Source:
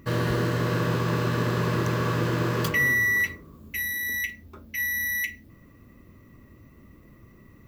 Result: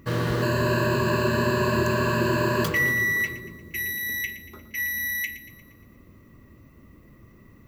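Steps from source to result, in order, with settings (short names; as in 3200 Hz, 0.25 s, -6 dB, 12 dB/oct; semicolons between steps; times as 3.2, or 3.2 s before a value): 0.42–2.64 ripple EQ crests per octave 1.4, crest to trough 16 dB; split-band echo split 420 Hz, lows 0.431 s, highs 0.117 s, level -13 dB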